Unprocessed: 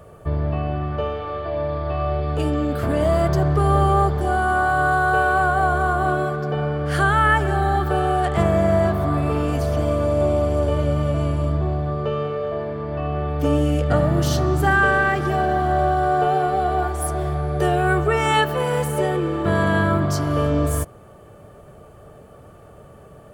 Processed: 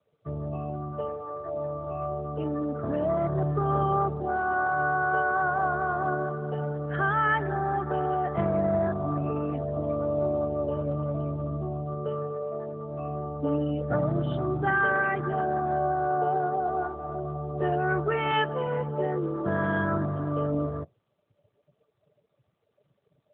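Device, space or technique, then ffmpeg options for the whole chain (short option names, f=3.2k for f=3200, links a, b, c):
mobile call with aggressive noise cancelling: -af "highpass=100,afftdn=nr=24:nf=-29,volume=-6.5dB" -ar 8000 -c:a libopencore_amrnb -b:a 12200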